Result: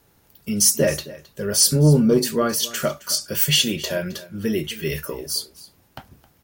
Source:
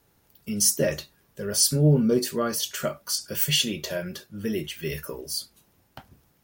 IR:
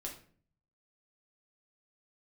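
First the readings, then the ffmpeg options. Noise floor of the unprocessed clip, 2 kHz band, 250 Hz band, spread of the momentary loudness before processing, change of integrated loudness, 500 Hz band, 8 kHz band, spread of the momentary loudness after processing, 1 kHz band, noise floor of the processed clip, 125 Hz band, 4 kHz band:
−65 dBFS, +5.0 dB, +5.0 dB, 14 LU, +4.5 dB, +5.0 dB, +5.0 dB, 15 LU, +5.5 dB, −60 dBFS, +4.5 dB, +5.0 dB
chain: -af "aecho=1:1:266:0.112,acontrast=76,volume=-1.5dB"

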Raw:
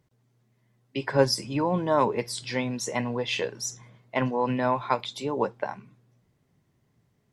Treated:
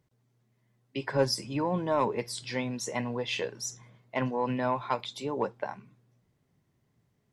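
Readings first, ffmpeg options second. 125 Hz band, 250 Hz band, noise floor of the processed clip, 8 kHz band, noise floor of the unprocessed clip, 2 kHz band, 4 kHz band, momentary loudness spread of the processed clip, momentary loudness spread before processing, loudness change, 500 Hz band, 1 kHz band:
−4.0 dB, −4.0 dB, −74 dBFS, −3.5 dB, −70 dBFS, −4.0 dB, −3.5 dB, 10 LU, 11 LU, −4.0 dB, −4.0 dB, −4.0 dB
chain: -af "asoftclip=type=tanh:threshold=-10dB,volume=-3.5dB"

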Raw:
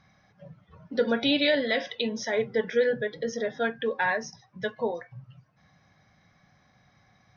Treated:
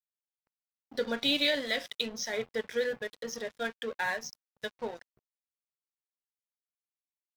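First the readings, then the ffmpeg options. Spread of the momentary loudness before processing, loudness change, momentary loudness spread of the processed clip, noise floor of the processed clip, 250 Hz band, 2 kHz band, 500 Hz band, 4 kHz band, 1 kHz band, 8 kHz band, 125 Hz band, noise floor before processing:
12 LU, −5.0 dB, 14 LU, below −85 dBFS, −8.5 dB, −4.5 dB, −8.0 dB, −0.5 dB, −7.0 dB, can't be measured, −11.5 dB, −64 dBFS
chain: -af "crystalizer=i=3.5:c=0,aeval=exprs='sgn(val(0))*max(abs(val(0))-0.0141,0)':channel_layout=same,volume=-6.5dB"

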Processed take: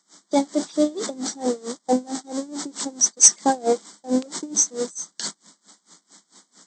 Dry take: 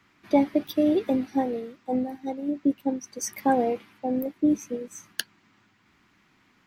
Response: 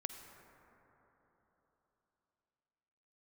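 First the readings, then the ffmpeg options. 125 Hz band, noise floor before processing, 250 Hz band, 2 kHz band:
can't be measured, −64 dBFS, −1.0 dB, 0.0 dB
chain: -filter_complex "[0:a]aeval=exprs='val(0)+0.5*0.0211*sgn(val(0))':channel_layout=same,agate=range=-21dB:threshold=-35dB:ratio=16:detection=peak,asuperstop=centerf=2600:order=4:qfactor=2.4,acrossover=split=1300[link_01][link_02];[link_01]alimiter=limit=-16.5dB:level=0:latency=1:release=91[link_03];[link_02]aderivative[link_04];[link_03][link_04]amix=inputs=2:normalize=0,crystalizer=i=4:c=0,acontrast=86,afftfilt=real='re*between(b*sr/4096,160,8300)':imag='im*between(b*sr/4096,160,8300)':win_size=4096:overlap=0.75,lowshelf=frequency=430:gain=-5.5,aeval=exprs='val(0)*pow(10,-24*(0.5-0.5*cos(2*PI*4.5*n/s))/20)':channel_layout=same,volume=4dB"

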